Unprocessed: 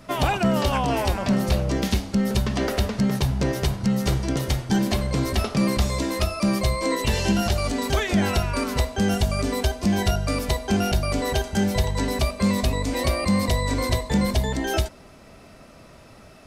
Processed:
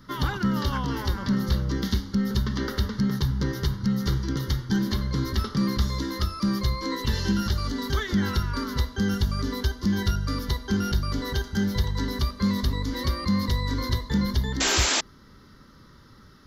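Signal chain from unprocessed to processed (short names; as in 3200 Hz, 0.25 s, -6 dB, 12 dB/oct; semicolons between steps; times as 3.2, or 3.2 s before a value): fixed phaser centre 2500 Hz, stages 6; painted sound noise, 14.6–15.01, 220–7700 Hz -22 dBFS; gain -1.5 dB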